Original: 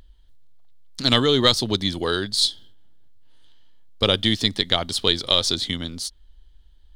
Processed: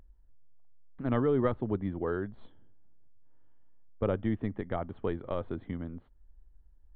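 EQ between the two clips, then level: Gaussian low-pass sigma 5.8 samples; -6.5 dB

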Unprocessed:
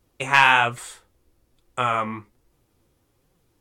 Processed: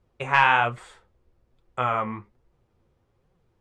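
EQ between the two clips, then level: distance through air 53 m; peaking EQ 290 Hz -13 dB 0.21 oct; treble shelf 2.9 kHz -12 dB; 0.0 dB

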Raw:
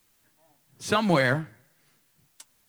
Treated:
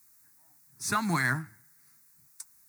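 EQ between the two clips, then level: high-pass 45 Hz; treble shelf 2.8 kHz +11.5 dB; static phaser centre 1.3 kHz, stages 4; -3.5 dB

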